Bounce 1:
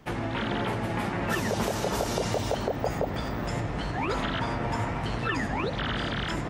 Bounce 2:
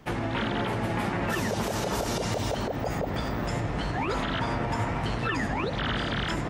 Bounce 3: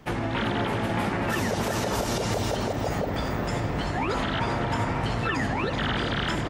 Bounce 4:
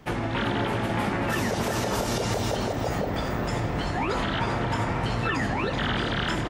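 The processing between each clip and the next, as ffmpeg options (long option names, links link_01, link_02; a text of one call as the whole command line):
ffmpeg -i in.wav -af "alimiter=limit=-20dB:level=0:latency=1:release=73,volume=1.5dB" out.wav
ffmpeg -i in.wav -af "aecho=1:1:384:0.376,volume=1.5dB" out.wav
ffmpeg -i in.wav -filter_complex "[0:a]asplit=2[link_01][link_02];[link_02]adelay=25,volume=-12dB[link_03];[link_01][link_03]amix=inputs=2:normalize=0" out.wav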